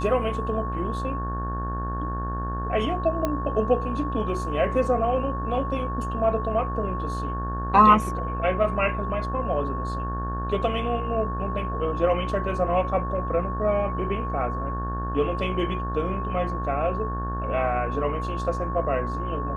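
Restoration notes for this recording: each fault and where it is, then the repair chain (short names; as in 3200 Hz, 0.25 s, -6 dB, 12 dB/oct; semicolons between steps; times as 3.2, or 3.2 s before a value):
buzz 60 Hz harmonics 30 -30 dBFS
tone 1100 Hz -31 dBFS
3.25 pop -12 dBFS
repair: de-click; notch 1100 Hz, Q 30; de-hum 60 Hz, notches 30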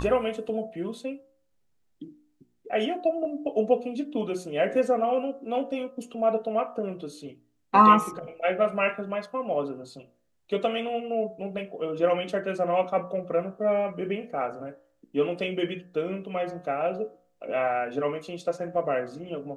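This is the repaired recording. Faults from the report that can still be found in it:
none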